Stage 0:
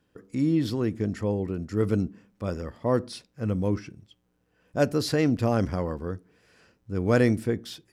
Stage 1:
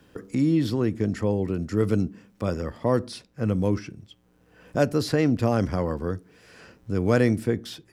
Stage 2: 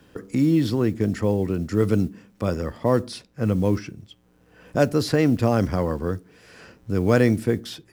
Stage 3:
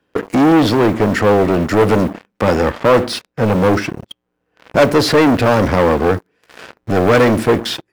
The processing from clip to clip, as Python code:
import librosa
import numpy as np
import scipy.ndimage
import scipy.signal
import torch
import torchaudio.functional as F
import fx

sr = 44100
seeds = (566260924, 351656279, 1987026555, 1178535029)

y1 = fx.band_squash(x, sr, depth_pct=40)
y1 = y1 * librosa.db_to_amplitude(2.0)
y2 = fx.mod_noise(y1, sr, seeds[0], snr_db=34)
y2 = y2 * librosa.db_to_amplitude(2.5)
y3 = fx.leveller(y2, sr, passes=5)
y3 = fx.bass_treble(y3, sr, bass_db=-9, treble_db=-9)
y3 = y3 * librosa.db_to_amplitude(1.0)